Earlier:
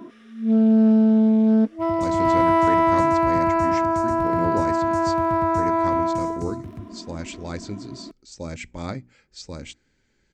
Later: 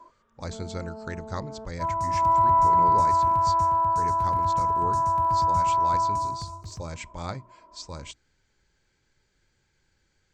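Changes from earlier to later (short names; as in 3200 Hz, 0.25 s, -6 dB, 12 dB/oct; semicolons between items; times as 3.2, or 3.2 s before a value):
speech: entry -1.60 s; first sound: add double band-pass 750 Hz, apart 0.73 oct; master: add ten-band EQ 250 Hz -10 dB, 500 Hz -3 dB, 1000 Hz +4 dB, 2000 Hz -5 dB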